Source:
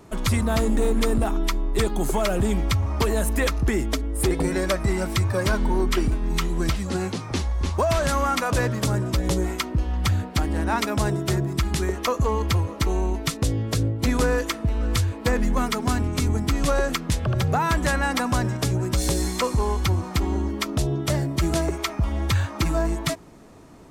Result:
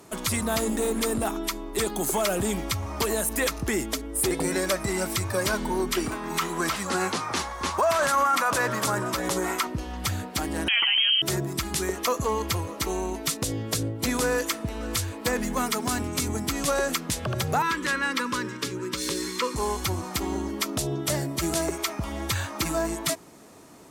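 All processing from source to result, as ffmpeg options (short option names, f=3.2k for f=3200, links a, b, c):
-filter_complex "[0:a]asettb=1/sr,asplit=3[a][b][c];[a]atrim=end=6.064[d];[b]atrim=start=6.06:end=9.67,asetpts=PTS-STARTPTS,afade=t=in:d=0.004:c=qsin,afade=t=out:st=3.606:d=0.004:c=qsin,highpass=f=120:p=1,equalizer=f=1.2k:t=o:w=1.6:g=10.5[e];[c]atrim=start=9.666[f];[d][e]acrossfade=d=0.004:c1=hsin:c2=qsin[g];[g][f]acrossfade=d=0.004:c1=qsin:c2=hsin,asettb=1/sr,asplit=3[h][i][j];[h]atrim=end=10.684[k];[i]atrim=start=10.68:end=11.22,asetpts=PTS-STARTPTS,afade=t=in:d=0.004:c=qsin,afade=t=out:st=0.536:d=0.004:c=qsin,lowpass=f=2.8k:t=q:w=0.5098,lowpass=f=2.8k:t=q:w=0.6013,lowpass=f=2.8k:t=q:w=0.9,lowpass=f=2.8k:t=q:w=2.563,afreqshift=-3300,aemphasis=mode=production:type=75kf,acompressor=mode=upward:threshold=-19dB:ratio=2.5:attack=3.2:release=140:knee=2.83:detection=peak[l];[j]atrim=start=11.216[m];[k][l]acrossfade=d=0.004:c1=hsin:c2=qsin[n];[n][m]acrossfade=d=0.004:c1=qsin:c2=hsin,asettb=1/sr,asplit=3[o][p][q];[o]atrim=end=17.624[r];[p]atrim=start=17.62:end=19.56,asetpts=PTS-STARTPTS,afade=t=in:d=0.004:c=qsin,afade=t=out:st=1.936:d=0.004:c=qsin,asuperstop=centerf=700:order=4:qfactor=1.5,acrossover=split=200 4900:gain=0.224 1 0.224[s][t][u];[s][t][u]amix=inputs=3:normalize=0[v];[q]atrim=start=19.556[w];[r][v]acrossfade=d=0.004:c1=hsin:c2=qsin[x];[x][w]acrossfade=d=0.004:c1=qsin:c2=hsin,aemphasis=mode=production:type=cd,alimiter=limit=-14.5dB:level=0:latency=1:release=31,highpass=f=230:p=1"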